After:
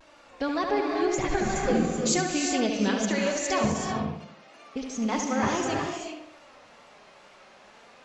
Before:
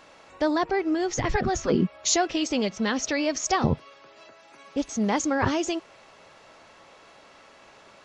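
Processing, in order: rattle on loud lows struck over -35 dBFS, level -32 dBFS; wow and flutter 120 cents; flange 0.48 Hz, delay 3.1 ms, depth 2.6 ms, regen +32%; tape echo 71 ms, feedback 51%, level -5 dB, low-pass 4.2 kHz; gated-style reverb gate 410 ms rising, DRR 2.5 dB; endings held to a fixed fall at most 130 dB/s

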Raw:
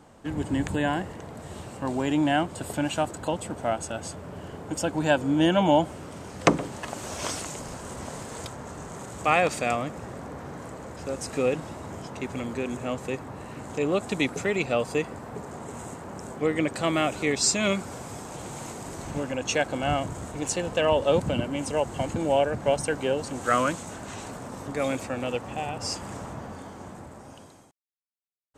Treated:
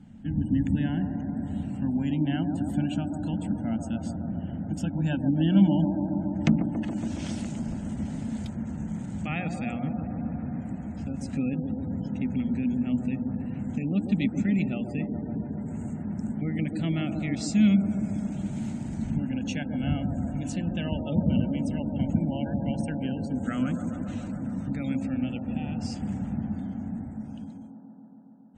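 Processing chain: peaking EQ 1.1 kHz -14.5 dB 0.35 oct; in parallel at -2 dB: compression, threshold -32 dBFS, peak gain reduction 17 dB; on the sum: hum notches 60/120/180/240/300 Hz; feedback echo behind a band-pass 139 ms, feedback 83%, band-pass 520 Hz, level -4 dB; spectral gate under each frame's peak -30 dB strong; FFT filter 140 Hz 0 dB, 220 Hz +8 dB, 420 Hz -23 dB, 880 Hz -15 dB, 3.2 kHz -11 dB, 5 kHz -16 dB, 9.7 kHz -19 dB; trim +1.5 dB

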